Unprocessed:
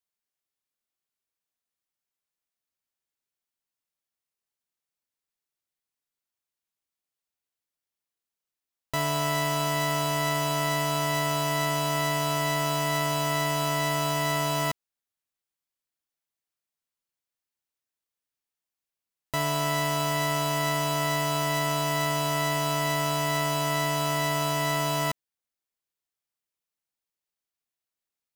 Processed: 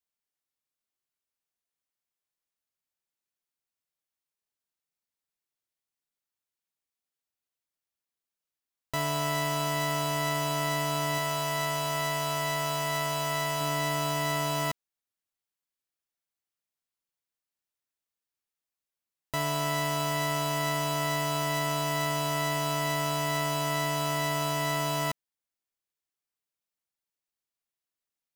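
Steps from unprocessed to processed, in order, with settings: 11.18–13.61 s: peaking EQ 240 Hz -11 dB 0.77 oct; trim -2.5 dB

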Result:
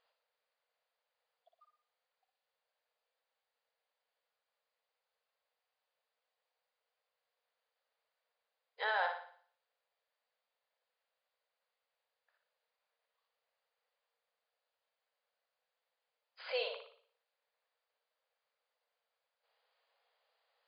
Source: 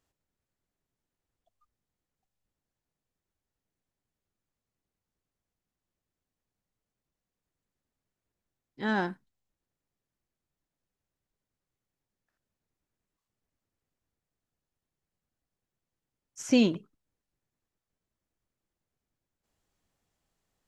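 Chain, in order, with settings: compression, threshold -27 dBFS, peak gain reduction 9 dB; peak limiter -26.5 dBFS, peak gain reduction 7.5 dB; brick-wall FIR band-pass 440–5000 Hz; flutter echo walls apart 10 m, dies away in 0.53 s; trim +4.5 dB

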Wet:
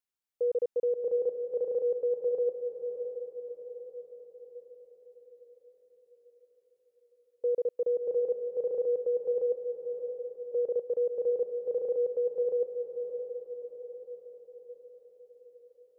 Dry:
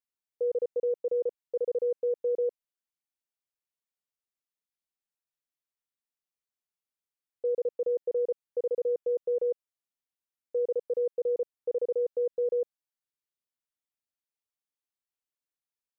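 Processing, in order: echo that smears into a reverb 647 ms, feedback 54%, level -6.5 dB

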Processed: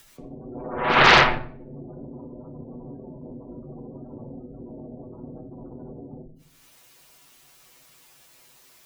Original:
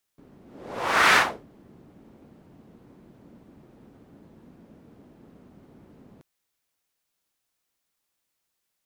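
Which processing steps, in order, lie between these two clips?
comb filter that takes the minimum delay 8.2 ms; frequency shift +15 Hz; in parallel at +3 dB: upward compressor, threshold -34 dBFS; on the sum: spectral gate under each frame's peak -15 dB strong; on a send at -3 dB: reverberation RT60 0.50 s, pre-delay 4 ms; on the sum: loudspeaker Doppler distortion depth 0.55 ms; trim -2.5 dB

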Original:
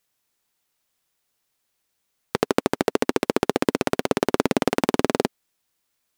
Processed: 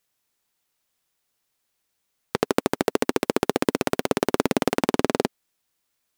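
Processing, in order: 2.45–4.77 s: treble shelf 10 kHz +6 dB; trim -1 dB

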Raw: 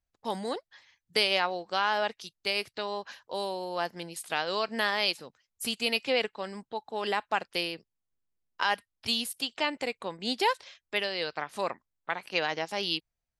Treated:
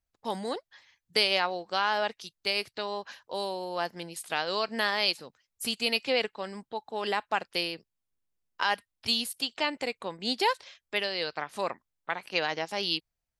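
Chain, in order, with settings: dynamic bell 4.4 kHz, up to +4 dB, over -47 dBFS, Q 7.1

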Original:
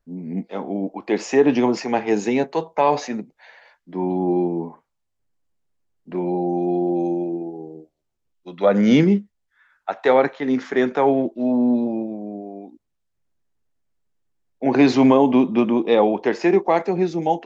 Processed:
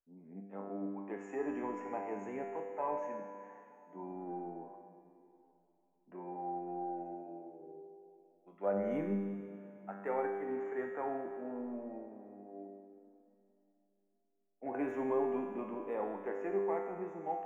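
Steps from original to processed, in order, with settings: bass shelf 290 Hz -11 dB; in parallel at -9.5 dB: hard clipper -22 dBFS, distortion -6 dB; on the sum: Butterworth band-stop 4.4 kHz, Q 0.53; feedback comb 99 Hz, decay 1.6 s, harmonics all, mix 90%; plate-style reverb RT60 3.3 s, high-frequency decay 1×, DRR 9.5 dB; trim -2.5 dB

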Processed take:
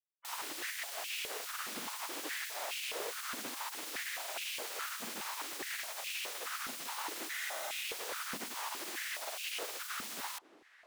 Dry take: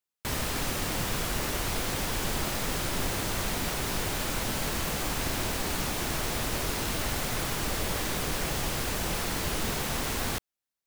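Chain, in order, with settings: spectral gate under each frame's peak -15 dB weak; filtered feedback delay 548 ms, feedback 83%, low-pass 1 kHz, level -14.5 dB; spectral freeze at 7.34 s, 0.50 s; step-sequenced high-pass 4.8 Hz 230–2600 Hz; trim -8.5 dB

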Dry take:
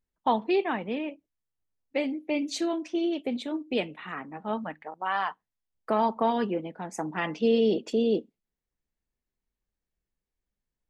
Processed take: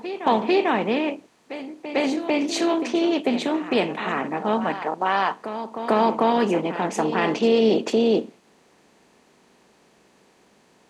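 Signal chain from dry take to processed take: spectral levelling over time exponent 0.6; high-pass 68 Hz; in parallel at -3 dB: peak limiter -18 dBFS, peak gain reduction 7.5 dB; on the sum: reverse echo 446 ms -11.5 dB

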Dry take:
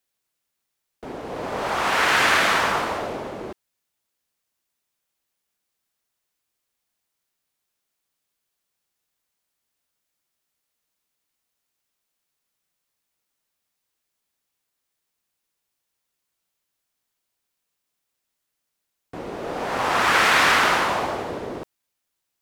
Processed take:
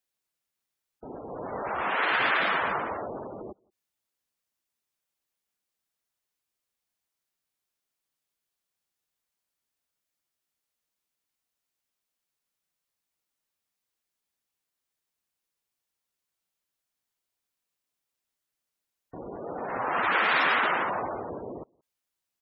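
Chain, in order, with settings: echo from a far wall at 30 m, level -30 dB; spectral gate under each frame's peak -15 dB strong; trim -6 dB

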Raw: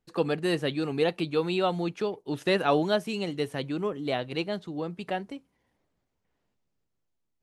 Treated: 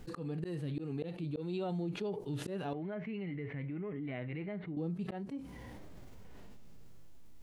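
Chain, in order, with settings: bass shelf 320 Hz +8 dB; harmonic-percussive split percussive -17 dB; slow attack 573 ms; peak limiter -26 dBFS, peak gain reduction 11 dB; 2.73–4.77 s: four-pole ladder low-pass 2.2 kHz, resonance 80%; level flattener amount 70%; trim -5 dB

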